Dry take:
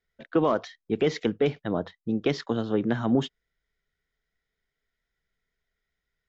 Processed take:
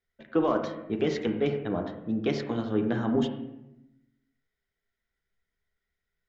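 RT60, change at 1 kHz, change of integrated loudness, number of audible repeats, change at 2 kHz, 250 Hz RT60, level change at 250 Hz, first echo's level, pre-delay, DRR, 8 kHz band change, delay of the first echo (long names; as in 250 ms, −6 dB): 0.90 s, −2.0 dB, −1.5 dB, no echo audible, −2.5 dB, 1.2 s, −1.0 dB, no echo audible, 10 ms, 3.5 dB, can't be measured, no echo audible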